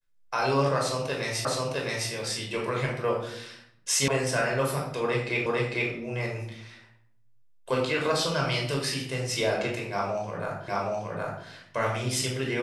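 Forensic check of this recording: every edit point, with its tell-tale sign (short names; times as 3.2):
1.45 repeat of the last 0.66 s
4.08 sound cut off
5.46 repeat of the last 0.45 s
10.68 repeat of the last 0.77 s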